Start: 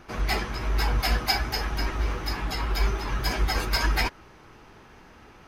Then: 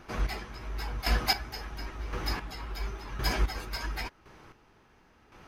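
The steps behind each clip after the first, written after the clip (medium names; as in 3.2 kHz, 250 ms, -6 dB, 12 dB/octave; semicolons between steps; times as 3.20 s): square tremolo 0.94 Hz, depth 65%, duty 25%; trim -2 dB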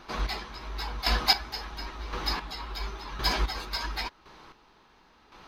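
fifteen-band graphic EQ 100 Hz -10 dB, 1 kHz +6 dB, 4 kHz +11 dB, 10 kHz -3 dB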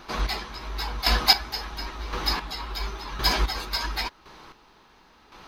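treble shelf 7.6 kHz +5.5 dB; trim +3.5 dB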